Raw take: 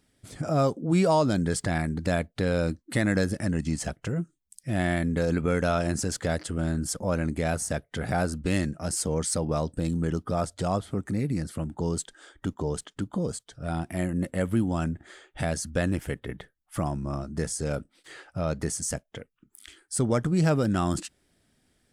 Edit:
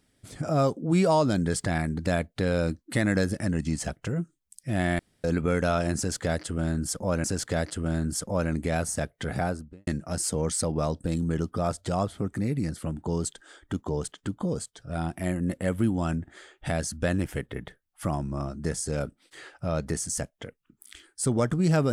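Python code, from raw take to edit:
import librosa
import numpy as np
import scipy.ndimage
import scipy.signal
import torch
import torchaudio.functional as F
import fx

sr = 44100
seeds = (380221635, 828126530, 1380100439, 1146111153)

y = fx.studio_fade_out(x, sr, start_s=8.03, length_s=0.57)
y = fx.edit(y, sr, fx.room_tone_fill(start_s=4.99, length_s=0.25),
    fx.repeat(start_s=5.97, length_s=1.27, count=2), tone=tone)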